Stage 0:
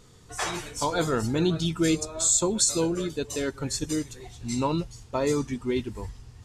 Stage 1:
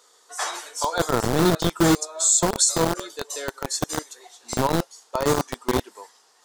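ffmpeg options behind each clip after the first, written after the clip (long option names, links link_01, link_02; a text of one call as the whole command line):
ffmpeg -i in.wav -filter_complex "[0:a]acrossover=split=500[link_01][link_02];[link_01]acrusher=bits=3:mix=0:aa=0.000001[link_03];[link_03][link_02]amix=inputs=2:normalize=0,equalizer=frequency=2500:width=2.1:gain=-8,volume=4dB" out.wav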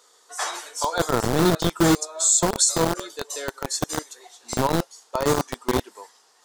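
ffmpeg -i in.wav -af anull out.wav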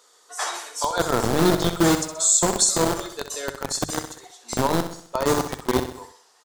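ffmpeg -i in.wav -filter_complex "[0:a]bandreject=frequency=50:width_type=h:width=6,bandreject=frequency=100:width_type=h:width=6,bandreject=frequency=150:width_type=h:width=6,asplit=2[link_01][link_02];[link_02]aecho=0:1:64|128|192|256|320:0.335|0.164|0.0804|0.0394|0.0193[link_03];[link_01][link_03]amix=inputs=2:normalize=0" out.wav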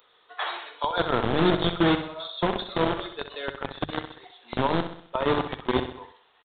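ffmpeg -i in.wav -af "acrusher=bits=9:mix=0:aa=0.000001,aresample=8000,aresample=44100,aemphasis=mode=production:type=75kf,volume=-3dB" out.wav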